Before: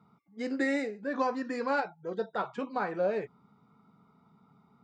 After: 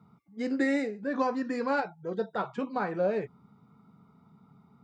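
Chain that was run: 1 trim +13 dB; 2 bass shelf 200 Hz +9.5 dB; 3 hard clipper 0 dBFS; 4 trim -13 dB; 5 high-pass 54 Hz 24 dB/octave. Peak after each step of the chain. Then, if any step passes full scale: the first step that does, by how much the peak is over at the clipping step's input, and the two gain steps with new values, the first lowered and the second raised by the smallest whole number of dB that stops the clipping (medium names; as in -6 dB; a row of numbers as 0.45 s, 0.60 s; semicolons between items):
-6.0 dBFS, -4.0 dBFS, -4.0 dBFS, -17.0 dBFS, -17.5 dBFS; nothing clips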